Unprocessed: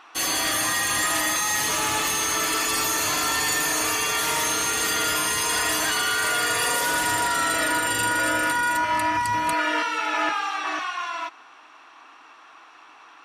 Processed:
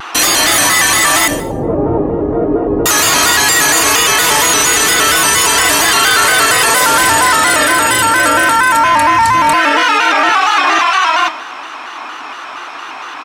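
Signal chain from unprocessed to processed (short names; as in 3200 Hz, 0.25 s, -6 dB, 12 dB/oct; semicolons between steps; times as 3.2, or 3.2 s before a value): 1.28–2.86 Chebyshev low-pass 530 Hz, order 3; doubler 24 ms -14 dB; Schroeder reverb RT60 0.55 s, combs from 30 ms, DRR 16.5 dB; maximiser +23.5 dB; shaped vibrato square 4.3 Hz, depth 100 cents; gain -1.5 dB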